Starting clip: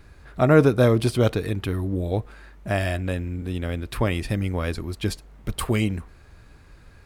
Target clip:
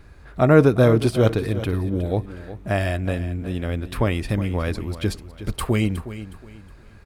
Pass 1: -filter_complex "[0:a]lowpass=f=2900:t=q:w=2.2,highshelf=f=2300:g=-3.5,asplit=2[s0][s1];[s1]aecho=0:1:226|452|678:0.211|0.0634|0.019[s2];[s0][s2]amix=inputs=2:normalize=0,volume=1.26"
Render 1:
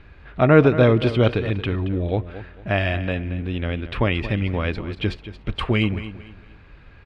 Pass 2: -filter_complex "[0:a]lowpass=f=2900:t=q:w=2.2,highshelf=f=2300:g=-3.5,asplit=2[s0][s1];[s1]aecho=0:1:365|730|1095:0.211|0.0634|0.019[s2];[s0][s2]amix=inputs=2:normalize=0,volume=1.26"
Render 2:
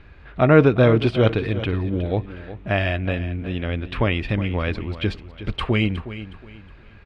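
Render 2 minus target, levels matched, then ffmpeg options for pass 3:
4 kHz band +3.5 dB
-filter_complex "[0:a]highshelf=f=2300:g=-3.5,asplit=2[s0][s1];[s1]aecho=0:1:365|730|1095:0.211|0.0634|0.019[s2];[s0][s2]amix=inputs=2:normalize=0,volume=1.26"

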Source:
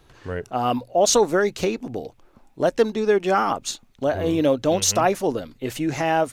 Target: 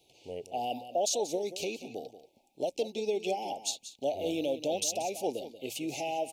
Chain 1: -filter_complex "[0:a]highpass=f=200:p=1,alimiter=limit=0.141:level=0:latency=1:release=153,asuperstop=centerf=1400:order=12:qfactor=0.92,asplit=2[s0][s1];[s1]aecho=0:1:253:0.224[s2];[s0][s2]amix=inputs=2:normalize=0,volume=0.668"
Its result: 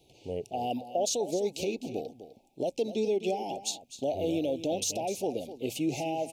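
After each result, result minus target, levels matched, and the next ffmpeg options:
echo 70 ms late; 250 Hz band +3.5 dB
-filter_complex "[0:a]highpass=f=200:p=1,alimiter=limit=0.141:level=0:latency=1:release=153,asuperstop=centerf=1400:order=12:qfactor=0.92,asplit=2[s0][s1];[s1]aecho=0:1:183:0.224[s2];[s0][s2]amix=inputs=2:normalize=0,volume=0.668"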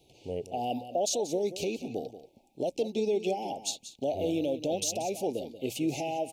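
250 Hz band +3.5 dB
-filter_complex "[0:a]highpass=f=750:p=1,alimiter=limit=0.141:level=0:latency=1:release=153,asuperstop=centerf=1400:order=12:qfactor=0.92,asplit=2[s0][s1];[s1]aecho=0:1:183:0.224[s2];[s0][s2]amix=inputs=2:normalize=0,volume=0.668"

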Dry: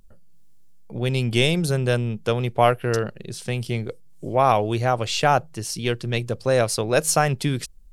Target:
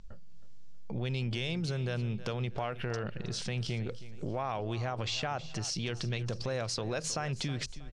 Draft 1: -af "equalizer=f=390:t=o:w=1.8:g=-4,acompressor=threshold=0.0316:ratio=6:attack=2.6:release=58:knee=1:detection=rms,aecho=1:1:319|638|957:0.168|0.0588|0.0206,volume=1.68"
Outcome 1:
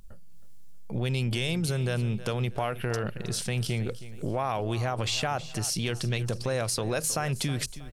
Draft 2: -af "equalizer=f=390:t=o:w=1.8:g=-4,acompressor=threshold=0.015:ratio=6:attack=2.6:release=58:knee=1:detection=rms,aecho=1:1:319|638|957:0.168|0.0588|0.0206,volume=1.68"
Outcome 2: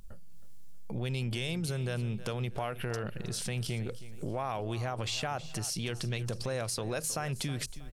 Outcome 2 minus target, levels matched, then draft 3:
8 kHz band +3.0 dB
-af "lowpass=f=6300:w=0.5412,lowpass=f=6300:w=1.3066,equalizer=f=390:t=o:w=1.8:g=-4,acompressor=threshold=0.015:ratio=6:attack=2.6:release=58:knee=1:detection=rms,aecho=1:1:319|638|957:0.168|0.0588|0.0206,volume=1.68"

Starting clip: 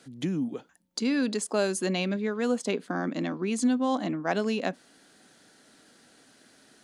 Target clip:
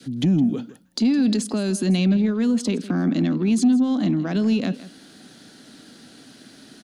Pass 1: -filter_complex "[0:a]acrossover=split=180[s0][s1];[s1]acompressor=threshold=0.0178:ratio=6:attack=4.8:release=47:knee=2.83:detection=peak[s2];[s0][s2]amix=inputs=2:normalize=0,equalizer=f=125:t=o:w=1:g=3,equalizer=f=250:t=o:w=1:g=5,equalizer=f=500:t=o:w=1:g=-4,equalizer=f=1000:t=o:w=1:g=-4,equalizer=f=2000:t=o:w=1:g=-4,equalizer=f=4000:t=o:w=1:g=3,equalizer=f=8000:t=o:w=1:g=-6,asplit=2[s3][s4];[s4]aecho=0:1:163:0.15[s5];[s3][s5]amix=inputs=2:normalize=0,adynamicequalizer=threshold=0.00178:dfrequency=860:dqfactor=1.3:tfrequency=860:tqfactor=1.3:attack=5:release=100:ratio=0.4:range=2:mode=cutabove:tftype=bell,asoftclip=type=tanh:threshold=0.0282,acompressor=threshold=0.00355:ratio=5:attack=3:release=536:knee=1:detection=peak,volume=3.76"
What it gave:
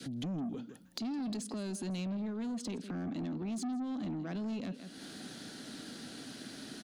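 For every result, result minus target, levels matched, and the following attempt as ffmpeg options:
compression: peak gain reduction +14.5 dB; saturation: distortion +14 dB
-filter_complex "[0:a]acrossover=split=180[s0][s1];[s1]acompressor=threshold=0.0178:ratio=6:attack=4.8:release=47:knee=2.83:detection=peak[s2];[s0][s2]amix=inputs=2:normalize=0,equalizer=f=125:t=o:w=1:g=3,equalizer=f=250:t=o:w=1:g=5,equalizer=f=500:t=o:w=1:g=-4,equalizer=f=1000:t=o:w=1:g=-4,equalizer=f=2000:t=o:w=1:g=-4,equalizer=f=4000:t=o:w=1:g=3,equalizer=f=8000:t=o:w=1:g=-6,asplit=2[s3][s4];[s4]aecho=0:1:163:0.15[s5];[s3][s5]amix=inputs=2:normalize=0,adynamicequalizer=threshold=0.00178:dfrequency=860:dqfactor=1.3:tfrequency=860:tqfactor=1.3:attack=5:release=100:ratio=0.4:range=2:mode=cutabove:tftype=bell,asoftclip=type=tanh:threshold=0.0282,volume=3.76"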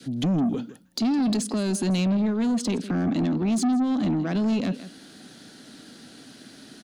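saturation: distortion +14 dB
-filter_complex "[0:a]acrossover=split=180[s0][s1];[s1]acompressor=threshold=0.0178:ratio=6:attack=4.8:release=47:knee=2.83:detection=peak[s2];[s0][s2]amix=inputs=2:normalize=0,equalizer=f=125:t=o:w=1:g=3,equalizer=f=250:t=o:w=1:g=5,equalizer=f=500:t=o:w=1:g=-4,equalizer=f=1000:t=o:w=1:g=-4,equalizer=f=2000:t=o:w=1:g=-4,equalizer=f=4000:t=o:w=1:g=3,equalizer=f=8000:t=o:w=1:g=-6,asplit=2[s3][s4];[s4]aecho=0:1:163:0.15[s5];[s3][s5]amix=inputs=2:normalize=0,adynamicequalizer=threshold=0.00178:dfrequency=860:dqfactor=1.3:tfrequency=860:tqfactor=1.3:attack=5:release=100:ratio=0.4:range=2:mode=cutabove:tftype=bell,asoftclip=type=tanh:threshold=0.0944,volume=3.76"

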